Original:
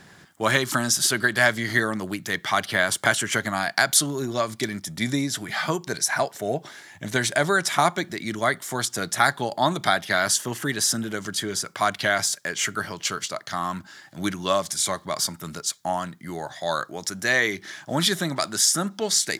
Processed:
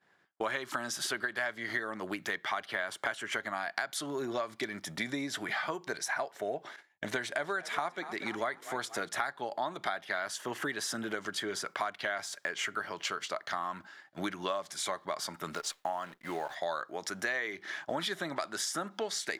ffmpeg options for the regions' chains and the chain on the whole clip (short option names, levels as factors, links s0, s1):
-filter_complex "[0:a]asettb=1/sr,asplit=3[s0][s1][s2];[s0]atrim=end=6.764[s3];[s1]atrim=start=6.76:end=9.09,asetpts=PTS-STARTPTS,afade=t=in:d=0.004:c=qsin,afade=t=out:st=2.326:d=0.004:c=qsin,agate=range=0.0224:threshold=0.00891:ratio=3:release=100:detection=peak,asplit=5[s4][s5][s6][s7][s8];[s5]adelay=239,afreqshift=49,volume=0.112[s9];[s6]adelay=478,afreqshift=98,volume=0.0562[s10];[s7]adelay=717,afreqshift=147,volume=0.0282[s11];[s8]adelay=956,afreqshift=196,volume=0.014[s12];[s4][s9][s10][s11][s12]amix=inputs=5:normalize=0,atrim=end_sample=102753[s13];[s2]atrim=start=9.086[s14];[s3][s13]acrossfade=d=0.004:c1=hsin:c2=qsin[s15];[s15][s14]acrossfade=d=0.004:c1=qsin:c2=hsin,asettb=1/sr,asplit=3[s16][s17][s18];[s16]atrim=end=15.544[s19];[s17]atrim=start=15.54:end=16.55,asetpts=PTS-STARTPTS,afade=t=in:d=0.004:c=qsin,afade=t=out:st=1.006:d=0.004:c=qsin,lowshelf=f=260:g=-4,acrusher=bits=8:dc=4:mix=0:aa=0.000001[s20];[s18]atrim=start=16.546[s21];[s19][s20]acrossfade=d=0.004:c1=hsin:c2=qsin[s22];[s22][s21]acrossfade=d=0.004:c1=qsin:c2=hsin,agate=range=0.0224:threshold=0.0141:ratio=3:detection=peak,bass=f=250:g=-15,treble=f=4000:g=-13,acompressor=threshold=0.0158:ratio=5,volume=1.5"